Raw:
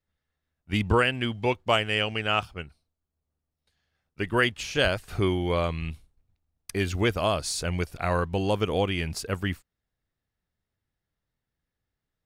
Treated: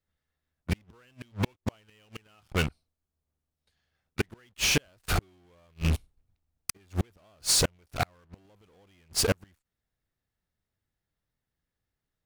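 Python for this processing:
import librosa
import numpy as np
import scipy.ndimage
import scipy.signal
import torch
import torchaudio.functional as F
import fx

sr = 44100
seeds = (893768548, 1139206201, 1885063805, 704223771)

p1 = fx.fuzz(x, sr, gain_db=48.0, gate_db=-47.0)
p2 = x + F.gain(torch.from_numpy(p1), -9.0).numpy()
p3 = fx.gate_flip(p2, sr, shuts_db=-14.0, range_db=-40)
y = F.gain(torch.from_numpy(p3), -1.5).numpy()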